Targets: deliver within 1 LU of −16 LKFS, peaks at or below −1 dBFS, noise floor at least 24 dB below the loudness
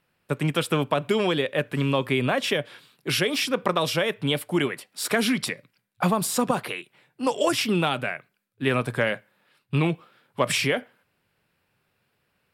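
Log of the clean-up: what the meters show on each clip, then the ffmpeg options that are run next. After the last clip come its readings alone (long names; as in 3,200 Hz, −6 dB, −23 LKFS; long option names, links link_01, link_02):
integrated loudness −25.0 LKFS; sample peak −8.5 dBFS; target loudness −16.0 LKFS
→ -af "volume=9dB,alimiter=limit=-1dB:level=0:latency=1"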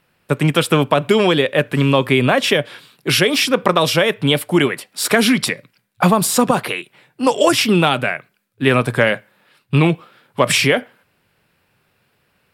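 integrated loudness −16.5 LKFS; sample peak −1.0 dBFS; background noise floor −64 dBFS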